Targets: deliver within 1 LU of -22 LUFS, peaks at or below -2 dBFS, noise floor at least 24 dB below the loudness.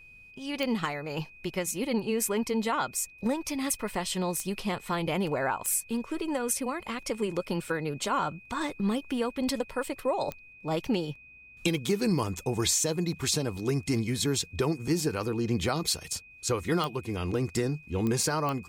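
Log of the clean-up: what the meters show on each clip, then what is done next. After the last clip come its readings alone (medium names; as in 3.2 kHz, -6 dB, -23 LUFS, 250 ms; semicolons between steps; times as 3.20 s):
clicks found 7; steady tone 2.5 kHz; tone level -50 dBFS; loudness -30.0 LUFS; peak level -14.0 dBFS; loudness target -22.0 LUFS
-> de-click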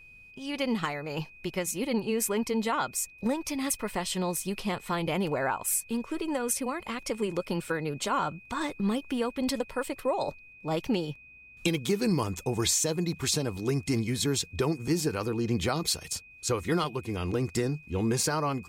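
clicks found 0; steady tone 2.5 kHz; tone level -50 dBFS
-> band-stop 2.5 kHz, Q 30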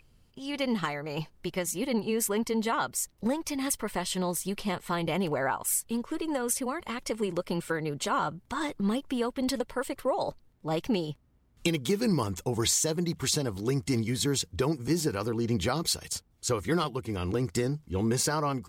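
steady tone not found; loudness -30.0 LUFS; peak level -13.5 dBFS; loudness target -22.0 LUFS
-> trim +8 dB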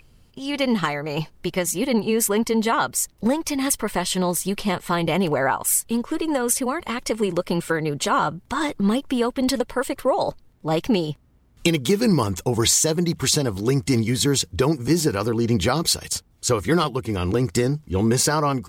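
loudness -22.0 LUFS; peak level -5.5 dBFS; noise floor -56 dBFS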